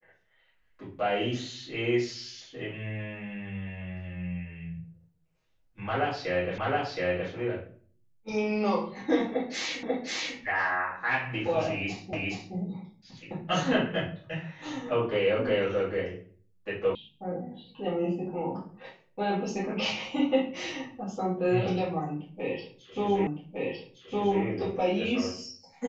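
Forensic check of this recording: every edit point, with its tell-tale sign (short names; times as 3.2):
6.58 repeat of the last 0.72 s
9.83 repeat of the last 0.54 s
12.13 repeat of the last 0.42 s
16.95 sound cut off
23.27 repeat of the last 1.16 s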